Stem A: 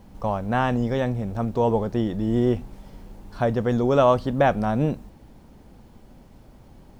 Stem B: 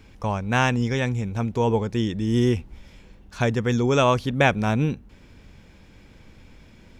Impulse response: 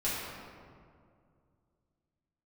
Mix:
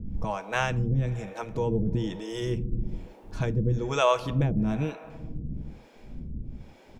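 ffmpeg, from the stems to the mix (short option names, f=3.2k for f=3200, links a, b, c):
-filter_complex "[0:a]lowshelf=f=180:g=5.5,acompressor=threshold=-29dB:ratio=6,tiltshelf=f=840:g=10,volume=-1.5dB,asplit=2[a][b];[b]volume=-15.5dB[c];[1:a]adelay=6.7,volume=-3.5dB,asplit=2[d][e];[e]volume=-18.5dB[f];[2:a]atrim=start_sample=2205[g];[c][f]amix=inputs=2:normalize=0[h];[h][g]afir=irnorm=-1:irlink=0[i];[a][d][i]amix=inputs=3:normalize=0,acrossover=split=410[j][k];[j]aeval=exprs='val(0)*(1-1/2+1/2*cos(2*PI*1.1*n/s))':c=same[l];[k]aeval=exprs='val(0)*(1-1/2-1/2*cos(2*PI*1.1*n/s))':c=same[m];[l][m]amix=inputs=2:normalize=0"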